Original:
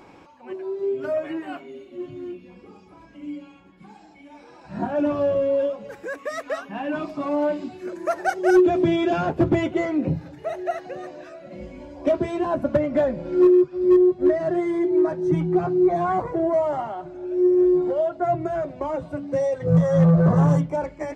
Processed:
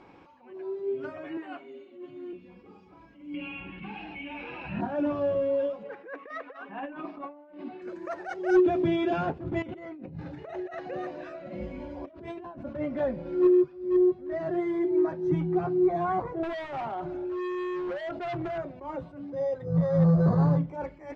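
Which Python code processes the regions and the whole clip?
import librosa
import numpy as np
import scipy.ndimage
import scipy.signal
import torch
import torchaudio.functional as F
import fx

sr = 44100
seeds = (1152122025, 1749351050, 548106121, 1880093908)

y = fx.chain(x, sr, fx.highpass(hz=240.0, slope=12),
    fx.peak_eq(hz=5500.0, db=-5.0, octaves=0.32), at=(1.37, 2.33))
y = fx.chain(y, sr, fx.lowpass_res(hz=2700.0, q=10.0),
    fx.low_shelf(hz=160.0, db=8.0),
    fx.env_flatten(amount_pct=50), at=(3.34, 4.81))
y = fx.chain(y, sr, fx.bandpass_edges(low_hz=270.0, high_hz=2500.0),
    fx.over_compress(threshold_db=-31.0, ratio=-0.5), at=(5.83, 7.82))
y = fx.chain(y, sr, fx.over_compress(threshold_db=-33.0, ratio=-1.0),
    fx.high_shelf(hz=4800.0, db=-4.5), at=(9.62, 12.58))
y = fx.chain(y, sr, fx.overload_stage(gain_db=26.0),
    fx.env_flatten(amount_pct=70), at=(16.43, 18.58))
y = fx.chain(y, sr, fx.high_shelf(hz=4500.0, db=-9.5),
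    fx.resample_linear(factor=8), at=(19.3, 20.68))
y = scipy.signal.sosfilt(scipy.signal.butter(2, 4100.0, 'lowpass', fs=sr, output='sos'), y)
y = fx.notch(y, sr, hz=620.0, q=14.0)
y = fx.attack_slew(y, sr, db_per_s=120.0)
y = F.gain(torch.from_numpy(y), -5.0).numpy()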